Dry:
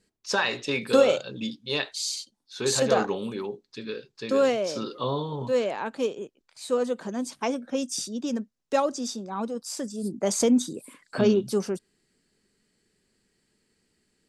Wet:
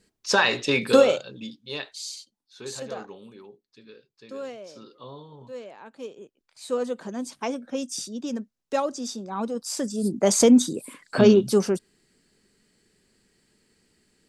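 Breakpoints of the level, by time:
0:00.87 +5 dB
0:01.40 −5.5 dB
0:02.07 −5.5 dB
0:03.05 −14 dB
0:05.79 −14 dB
0:06.69 −1.5 dB
0:08.95 −1.5 dB
0:09.98 +5.5 dB

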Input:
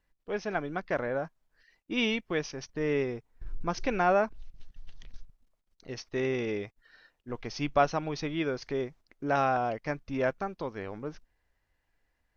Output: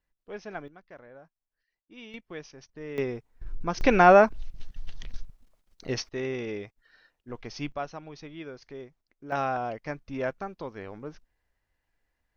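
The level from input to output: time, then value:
−6.5 dB
from 0:00.68 −18 dB
from 0:02.14 −9.5 dB
from 0:02.98 +1.5 dB
from 0:03.81 +9 dB
from 0:06.09 −2 dB
from 0:07.72 −10 dB
from 0:09.32 −2 dB

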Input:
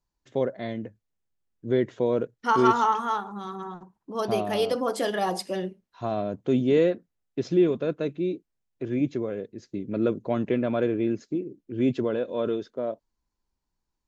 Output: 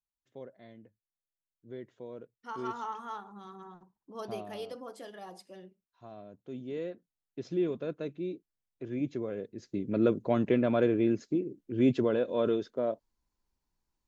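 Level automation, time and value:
0:02.31 −20 dB
0:03.24 −12 dB
0:04.25 −12 dB
0:05.11 −19.5 dB
0:06.44 −19.5 dB
0:07.69 −8.5 dB
0:08.89 −8.5 dB
0:09.81 −1 dB

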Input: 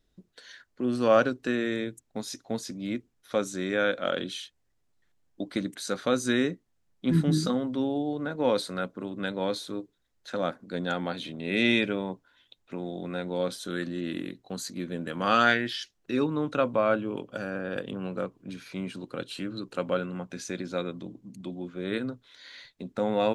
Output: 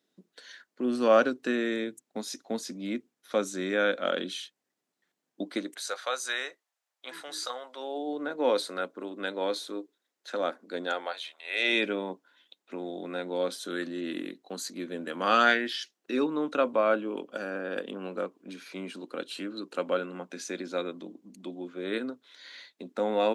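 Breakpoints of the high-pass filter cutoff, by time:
high-pass filter 24 dB per octave
0:05.46 200 Hz
0:05.99 640 Hz
0:07.71 640 Hz
0:08.15 280 Hz
0:10.83 280 Hz
0:11.37 990 Hz
0:11.86 240 Hz

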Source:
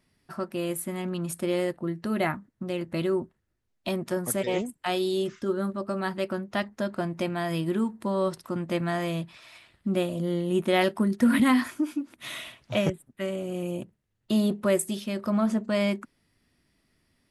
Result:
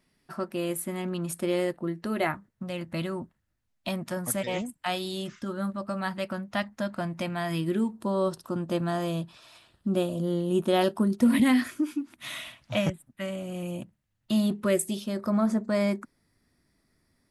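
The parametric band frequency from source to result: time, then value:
parametric band −12.5 dB 0.42 octaves
0:01.76 93 Hz
0:02.76 400 Hz
0:07.44 400 Hz
0:08.01 2,100 Hz
0:11.07 2,100 Hz
0:12.27 410 Hz
0:14.44 410 Hz
0:15.17 2,900 Hz

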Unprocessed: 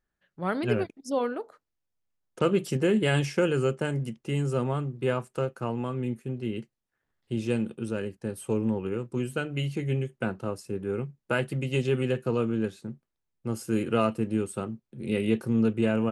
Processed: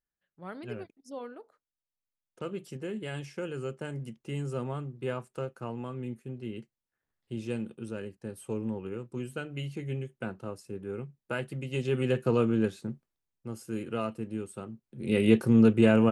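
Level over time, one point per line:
0:03.27 −13 dB
0:04.16 −6.5 dB
0:11.68 −6.5 dB
0:12.21 +1.5 dB
0:12.89 +1.5 dB
0:13.51 −8 dB
0:14.65 −8 dB
0:15.28 +4 dB

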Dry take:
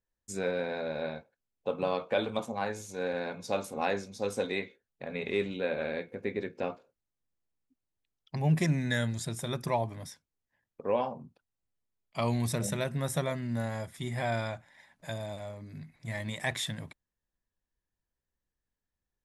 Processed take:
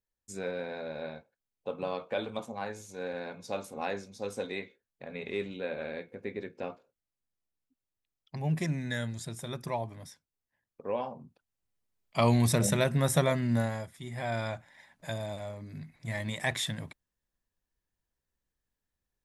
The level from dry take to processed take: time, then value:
0:11.02 −4 dB
0:12.22 +5.5 dB
0:13.56 +5.5 dB
0:14.00 −6.5 dB
0:14.53 +1.5 dB

